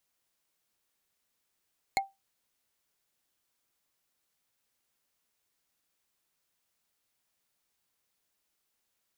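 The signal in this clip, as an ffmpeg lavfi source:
ffmpeg -f lavfi -i "aevalsrc='0.0891*pow(10,-3*t/0.2)*sin(2*PI*783*t)+0.0708*pow(10,-3*t/0.059)*sin(2*PI*2158.7*t)+0.0562*pow(10,-3*t/0.026)*sin(2*PI*4231.3*t)+0.0447*pow(10,-3*t/0.014)*sin(2*PI*6994.5*t)+0.0355*pow(10,-3*t/0.009)*sin(2*PI*10445.2*t)':duration=0.45:sample_rate=44100" out.wav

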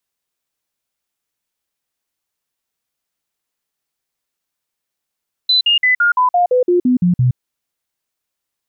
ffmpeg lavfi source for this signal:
ffmpeg -f lavfi -i "aevalsrc='0.335*clip(min(mod(t,0.17),0.12-mod(t,0.17))/0.005,0,1)*sin(2*PI*4010*pow(2,-floor(t/0.17)/2)*mod(t,0.17))':duration=1.87:sample_rate=44100" out.wav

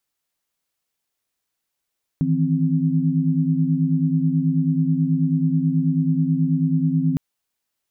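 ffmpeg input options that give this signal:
ffmpeg -f lavfi -i "aevalsrc='0.0891*(sin(2*PI*155.56*t)+sin(2*PI*164.81*t)+sin(2*PI*261.63*t))':duration=4.96:sample_rate=44100" out.wav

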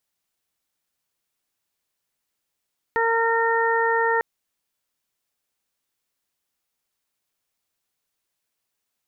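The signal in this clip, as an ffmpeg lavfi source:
ffmpeg -f lavfi -i "aevalsrc='0.075*sin(2*PI*458*t)+0.075*sin(2*PI*916*t)+0.0398*sin(2*PI*1374*t)+0.0668*sin(2*PI*1832*t)':duration=1.25:sample_rate=44100" out.wav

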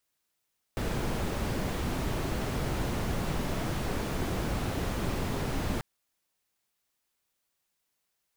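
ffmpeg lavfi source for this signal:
ffmpeg -f lavfi -i "anoisesrc=color=brown:amplitude=0.14:duration=5.04:sample_rate=44100:seed=1" out.wav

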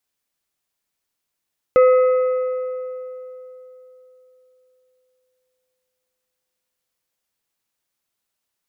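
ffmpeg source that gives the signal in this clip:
ffmpeg -f lavfi -i "aevalsrc='0.398*pow(10,-3*t/3.58)*sin(2*PI*509*t)+0.112*pow(10,-3*t/2.72)*sin(2*PI*1272.5*t)+0.0316*pow(10,-3*t/2.362)*sin(2*PI*2036*t)+0.00891*pow(10,-3*t/2.209)*sin(2*PI*2545*t)':duration=6.43:sample_rate=44100" out.wav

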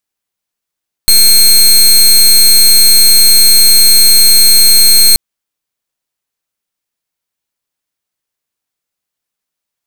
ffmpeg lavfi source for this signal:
ffmpeg -f lavfi -i "aevalsrc='0.596*(2*lt(mod(4210*t,1),0.2)-1)':duration=4.08:sample_rate=44100" out.wav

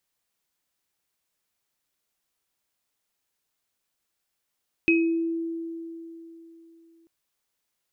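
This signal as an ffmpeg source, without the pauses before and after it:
ffmpeg -f lavfi -i "aevalsrc='0.133*pow(10,-3*t/3.4)*sin(2*PI*331*t)+0.15*pow(10,-3*t/0.43)*sin(2*PI*2540*t)':duration=2.19:sample_rate=44100" out.wav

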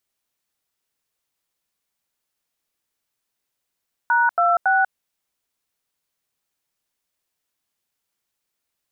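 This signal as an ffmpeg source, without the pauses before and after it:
ffmpeg -f lavfi -i "aevalsrc='0.141*clip(min(mod(t,0.278),0.192-mod(t,0.278))/0.002,0,1)*(eq(floor(t/0.278),0)*(sin(2*PI*941*mod(t,0.278))+sin(2*PI*1477*mod(t,0.278)))+eq(floor(t/0.278),1)*(sin(2*PI*697*mod(t,0.278))+sin(2*PI*1336*mod(t,0.278)))+eq(floor(t/0.278),2)*(sin(2*PI*770*mod(t,0.278))+sin(2*PI*1477*mod(t,0.278))))':duration=0.834:sample_rate=44100" out.wav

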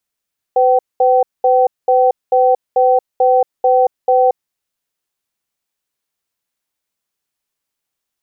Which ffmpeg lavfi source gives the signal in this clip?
ffmpeg -f lavfi -i "aevalsrc='0.282*(sin(2*PI*506*t)+sin(2*PI*767*t))*clip(min(mod(t,0.44),0.23-mod(t,0.44))/0.005,0,1)':duration=3.76:sample_rate=44100" out.wav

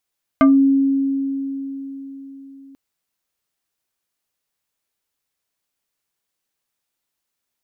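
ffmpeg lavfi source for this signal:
ffmpeg -f lavfi -i "aevalsrc='0.422*pow(10,-3*t/4.24)*sin(2*PI*273*t+1.3*pow(10,-3*t/0.2)*sin(2*PI*3.36*273*t))':duration=2.34:sample_rate=44100" out.wav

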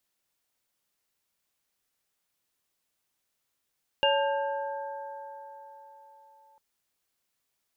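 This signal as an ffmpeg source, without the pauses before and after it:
ffmpeg -f lavfi -i "aevalsrc='0.0708*pow(10,-3*t/3.45)*sin(2*PI*559*t)+0.0531*pow(10,-3*t/4.72)*sin(2*PI*879*t)+0.0282*pow(10,-3*t/2.78)*sin(2*PI*1600*t)+0.075*pow(10,-3*t/0.71)*sin(2*PI*2810*t)':duration=2.55:sample_rate=44100" out.wav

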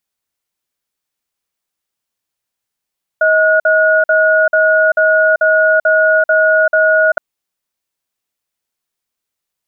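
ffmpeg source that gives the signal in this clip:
ffmpeg -f lavfi -i "aevalsrc='0.299*(sin(2*PI*632*t)+sin(2*PI*1450*t))*clip(min(mod(t,0.44),0.39-mod(t,0.44))/0.005,0,1)':duration=3.97:sample_rate=44100" out.wav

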